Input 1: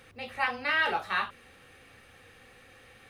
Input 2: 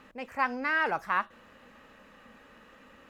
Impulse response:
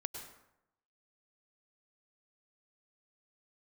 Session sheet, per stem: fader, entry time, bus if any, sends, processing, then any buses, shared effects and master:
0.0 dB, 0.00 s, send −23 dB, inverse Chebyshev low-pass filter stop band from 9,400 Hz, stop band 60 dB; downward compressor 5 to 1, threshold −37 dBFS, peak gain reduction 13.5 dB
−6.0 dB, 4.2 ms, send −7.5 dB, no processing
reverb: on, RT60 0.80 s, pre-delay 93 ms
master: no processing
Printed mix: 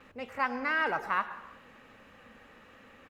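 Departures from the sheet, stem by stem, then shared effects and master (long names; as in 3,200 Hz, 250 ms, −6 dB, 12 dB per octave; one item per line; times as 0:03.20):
stem 1 0.0 dB → −6.5 dB
stem 2: send −7.5 dB → −1.5 dB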